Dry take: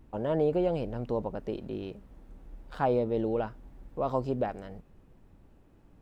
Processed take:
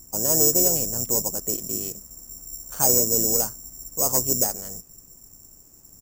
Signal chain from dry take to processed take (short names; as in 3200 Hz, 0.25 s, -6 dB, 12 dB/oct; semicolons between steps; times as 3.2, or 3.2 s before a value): careless resampling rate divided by 6×, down filtered, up zero stuff; one-sided clip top -7 dBFS; harmoniser -5 st -10 dB, -4 st -14 dB